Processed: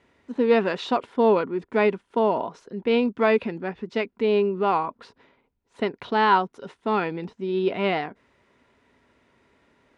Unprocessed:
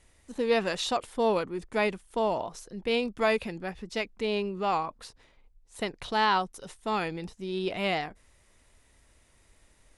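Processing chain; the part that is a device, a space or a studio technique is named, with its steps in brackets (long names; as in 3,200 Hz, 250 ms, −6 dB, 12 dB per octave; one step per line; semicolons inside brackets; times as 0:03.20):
high-pass filter 130 Hz 12 dB per octave
inside a cardboard box (low-pass filter 2,900 Hz 12 dB per octave; hollow resonant body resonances 250/400/970/1,400 Hz, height 7 dB, ringing for 40 ms)
level +3.5 dB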